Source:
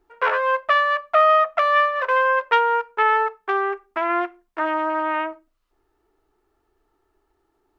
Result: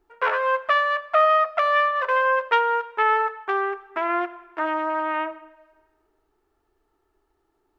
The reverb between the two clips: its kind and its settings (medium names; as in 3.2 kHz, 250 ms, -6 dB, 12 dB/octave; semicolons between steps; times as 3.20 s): algorithmic reverb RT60 1.3 s, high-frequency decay 0.85×, pre-delay 35 ms, DRR 17 dB; trim -2 dB